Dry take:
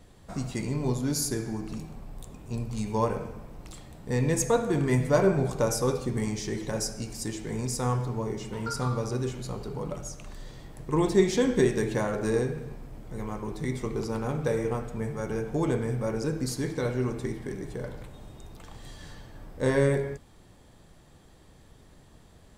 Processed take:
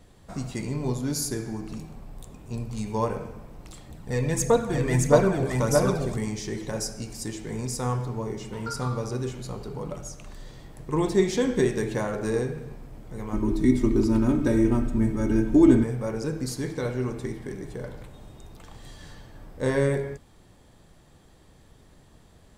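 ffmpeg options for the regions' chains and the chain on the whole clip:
ffmpeg -i in.wav -filter_complex "[0:a]asettb=1/sr,asplit=3[link_01][link_02][link_03];[link_01]atrim=end=3.894[link_04];[link_02]atrim=start=3.89:end=6.17,asetpts=PTS-STARTPTS,afade=type=in:duration=0.004:curve=qsin,afade=type=out:start_time=2.276:duration=0.004:curve=qsin,aphaser=in_gain=1:out_gain=1:delay=2:decay=0.44:speed=1.6:type=triangular,aecho=1:1:621:0.708,atrim=end_sample=100548[link_05];[link_03]atrim=start=6.166[link_06];[link_04][link_05]acrossfade=duration=0.004:curve1=hsin:curve2=qsin[link_07];[link_07][link_06]acrossfade=duration=0.004:curve1=qsin:curve2=hsin,asettb=1/sr,asplit=3[link_08][link_09][link_10];[link_08]atrim=end=13.334[link_11];[link_09]atrim=start=13.33:end=15.84,asetpts=PTS-STARTPTS,afade=type=in:duration=0.004:curve=qsin,afade=type=out:start_time=2.506:duration=0.004:curve=qsin,lowshelf=frequency=410:width_type=q:width=1.5:gain=9,aecho=1:1:3.2:0.8,atrim=end_sample=110691[link_12];[link_10]atrim=start=15.836[link_13];[link_11][link_12]acrossfade=duration=0.004:curve1=hsin:curve2=qsin[link_14];[link_14][link_13]acrossfade=duration=0.004:curve1=qsin:curve2=hsin" out.wav

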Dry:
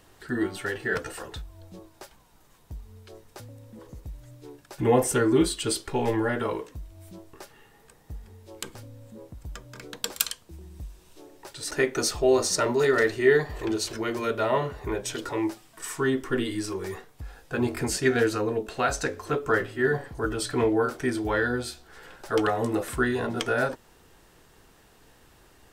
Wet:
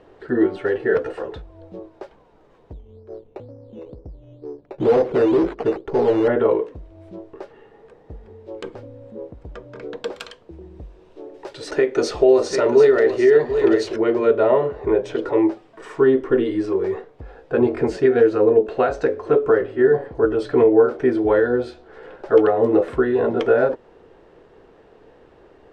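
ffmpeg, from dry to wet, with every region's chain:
ffmpeg -i in.wav -filter_complex "[0:a]asettb=1/sr,asplit=3[link_01][link_02][link_03];[link_01]atrim=end=2.734[link_04];[link_02]atrim=start=2.73:end=6.28,asetpts=PTS-STARTPTS,afade=type=in:duration=0.004:curve=qsin,afade=type=out:start_time=3.546:duration=0.004:curve=qsin,asoftclip=type=hard:threshold=-24.5dB,adynamicsmooth=sensitivity=6:basefreq=570,acrusher=samples=11:mix=1:aa=0.000001:lfo=1:lforange=6.6:lforate=2.1[link_05];[link_03]atrim=start=6.276[link_06];[link_04][link_05]acrossfade=duration=0.004:curve1=hsin:curve2=qsin[link_07];[link_07][link_06]acrossfade=duration=0.004:curve1=qsin:curve2=hsin,asettb=1/sr,asplit=3[link_08][link_09][link_10];[link_08]atrim=end=11.344[link_11];[link_09]atrim=start=11.34:end=13.96,asetpts=PTS-STARTPTS,afade=type=in:duration=0.004:curve=qsin,afade=type=out:start_time=2.616:duration=0.004:curve=qsin,highshelf=frequency=2600:gain=10.5,aecho=1:1:743:0.299,atrim=end_sample=115542[link_12];[link_10]atrim=start=13.956[link_13];[link_11][link_12]acrossfade=duration=0.004:curve1=hsin:curve2=qsin[link_14];[link_14][link_13]acrossfade=duration=0.004:curve1=qsin:curve2=hsin,lowpass=2900,alimiter=limit=-16.5dB:level=0:latency=1:release=263,equalizer=frequency=460:width_type=o:width=1.5:gain=14.5" out.wav

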